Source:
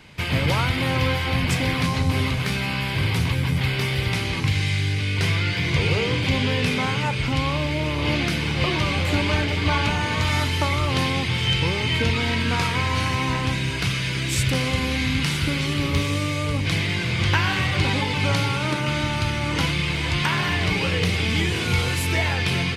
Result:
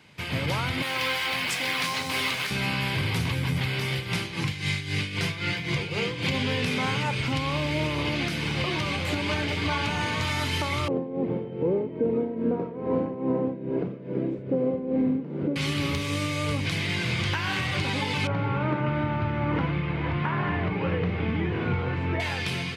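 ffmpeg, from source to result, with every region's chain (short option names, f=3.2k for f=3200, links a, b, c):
-filter_complex "[0:a]asettb=1/sr,asplit=3[a][b][c];[a]atrim=end=0.824[d];[b]atrim=start=0.82:end=2.51,asetpts=PTS-STARTPTS,afade=t=in:d=0.004:c=qsin,afade=t=out:st=1.686:d=0.004:c=qsin,highpass=f=1.1k:p=1,acrusher=bits=5:mode=log:mix=0:aa=0.000001[e];[c]atrim=start=2.506[f];[d][e]acrossfade=d=0.004:c1=hsin:c2=qsin[g];[g][f]acrossfade=d=0.004:c1=qsin:c2=hsin,asettb=1/sr,asplit=3[h][i][j];[h]atrim=end=3.924[k];[i]atrim=start=3.92:end=6.34,asetpts=PTS-STARTPTS,afade=t=in:d=0.004:c=qsin,afade=t=out:st=2.416:d=0.004:c=qsin,aecho=1:1:5.8:0.39,atrim=end_sample=106722,tremolo=f=3.8:d=0.7[l];[j]atrim=start=6.336[m];[k][l]acrossfade=d=0.004:c1=hsin:c2=qsin[n];[n][m]acrossfade=d=0.004:c1=qsin:c2=hsin,asettb=1/sr,asplit=3[o][p][q];[o]atrim=end=10.884[r];[p]atrim=start=10.88:end=15.56,asetpts=PTS-STARTPTS,afade=t=in:d=0.004:c=qsin,afade=t=out:st=4.676:d=0.004:c=qsin,lowpass=f=490:t=q:w=2.7,lowshelf=f=140:t=q:w=1.5:g=-13.5,tremolo=f=2.4:d=0.74[s];[q]atrim=start=15.556[t];[r][s]acrossfade=d=0.004:c1=hsin:c2=qsin[u];[u][t]acrossfade=d=0.004:c1=qsin:c2=hsin,asettb=1/sr,asplit=3[v][w][x];[v]atrim=end=18.274[y];[w]atrim=start=18.27:end=22.2,asetpts=PTS-STARTPTS,afade=t=in:d=0.004:c=qsin,afade=t=out:st=3.926:d=0.004:c=qsin,lowpass=1.5k,aemphasis=mode=reproduction:type=50fm[z];[x]atrim=start=22.196[aa];[y][z]acrossfade=d=0.004:c1=hsin:c2=qsin[ab];[ab][aa]acrossfade=d=0.004:c1=qsin:c2=hsin,dynaudnorm=f=200:g=7:m=11.5dB,alimiter=limit=-9.5dB:level=0:latency=1:release=406,highpass=100,volume=-6.5dB"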